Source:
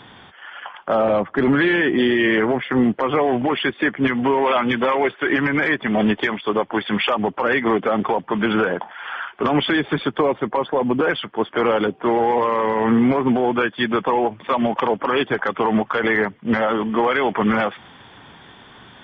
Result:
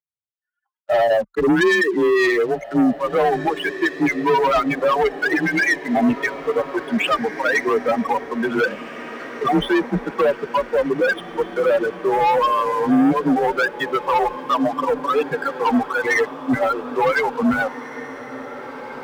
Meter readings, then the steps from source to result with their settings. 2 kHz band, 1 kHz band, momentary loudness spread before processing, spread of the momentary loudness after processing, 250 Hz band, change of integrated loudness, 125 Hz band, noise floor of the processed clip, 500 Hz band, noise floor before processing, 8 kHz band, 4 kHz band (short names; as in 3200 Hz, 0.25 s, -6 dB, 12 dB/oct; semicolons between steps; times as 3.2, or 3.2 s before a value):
+0.5 dB, +1.0 dB, 5 LU, 7 LU, -1.0 dB, 0.0 dB, -4.0 dB, -59 dBFS, +0.5 dB, -46 dBFS, n/a, -3.5 dB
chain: per-bin expansion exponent 3; LPF 2300 Hz 24 dB/oct; sample leveller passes 3; on a send: diffused feedback echo 1.893 s, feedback 57%, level -14 dB; on the sum: frequency shift +28 Hz; gain +1 dB